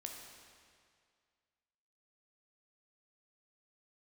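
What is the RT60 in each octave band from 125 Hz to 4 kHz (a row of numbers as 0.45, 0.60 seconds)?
2.1, 2.0, 2.1, 2.1, 2.0, 1.9 seconds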